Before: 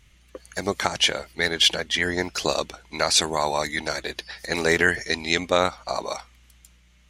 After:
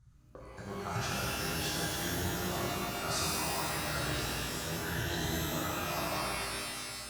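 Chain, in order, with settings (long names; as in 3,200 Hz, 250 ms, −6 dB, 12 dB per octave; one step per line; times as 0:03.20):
high shelf with overshoot 2,000 Hz −12.5 dB, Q 3
amplitude tremolo 1 Hz, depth 66%
reversed playback
downward compressor 6 to 1, threshold −37 dBFS, peak gain reduction 22 dB
reversed playback
noise gate −52 dBFS, range −12 dB
octave-band graphic EQ 125/250/500/1,000/2,000/4,000/8,000 Hz +12/−8/−6/−4/−11/+7/+6 dB
reverb with rising layers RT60 2.4 s, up +12 semitones, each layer −2 dB, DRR −7 dB
level +1 dB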